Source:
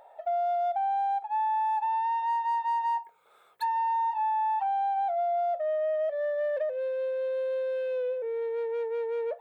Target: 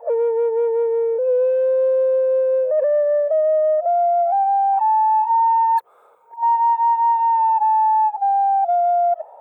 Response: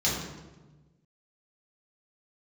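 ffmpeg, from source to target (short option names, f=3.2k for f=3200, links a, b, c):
-af "areverse,equalizer=f=500:t=o:w=1:g=10,equalizer=f=1k:t=o:w=1:g=9,equalizer=f=2k:t=o:w=1:g=-4,equalizer=f=4k:t=o:w=1:g=-9,volume=1.5dB"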